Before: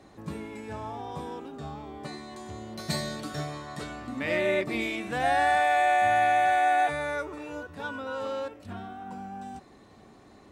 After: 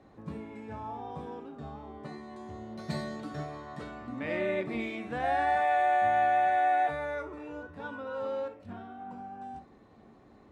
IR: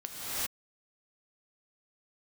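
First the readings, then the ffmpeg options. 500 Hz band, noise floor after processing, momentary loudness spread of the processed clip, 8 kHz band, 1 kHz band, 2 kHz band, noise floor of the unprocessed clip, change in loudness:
−3.0 dB, −57 dBFS, 19 LU, below −15 dB, −2.5 dB, −6.0 dB, −54 dBFS, −3.0 dB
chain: -filter_complex "[0:a]lowpass=frequency=1600:poles=1[link_01];[1:a]atrim=start_sample=2205,atrim=end_sample=3087[link_02];[link_01][link_02]afir=irnorm=-1:irlink=0"

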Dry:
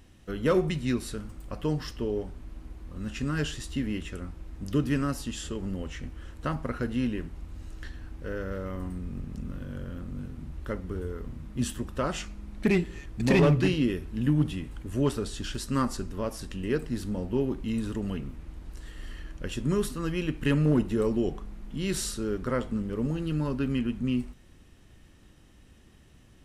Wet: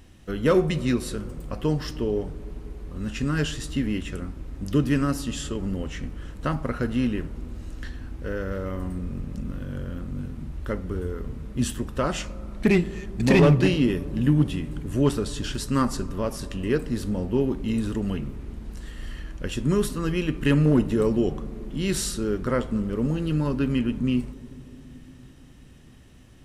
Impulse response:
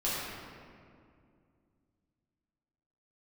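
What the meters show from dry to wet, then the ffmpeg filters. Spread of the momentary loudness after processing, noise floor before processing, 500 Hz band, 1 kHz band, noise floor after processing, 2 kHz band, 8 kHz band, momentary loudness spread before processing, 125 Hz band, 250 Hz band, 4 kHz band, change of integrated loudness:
16 LU, −55 dBFS, +4.5 dB, +4.0 dB, −48 dBFS, +4.0 dB, +4.0 dB, 16 LU, +4.5 dB, +4.5 dB, +4.0 dB, +4.5 dB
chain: -filter_complex "[0:a]asplit=2[link_01][link_02];[1:a]atrim=start_sample=2205,asetrate=22932,aresample=44100,lowpass=frequency=1400:width=0.5412,lowpass=frequency=1400:width=1.3066[link_03];[link_02][link_03]afir=irnorm=-1:irlink=0,volume=-28.5dB[link_04];[link_01][link_04]amix=inputs=2:normalize=0,volume=4dB"

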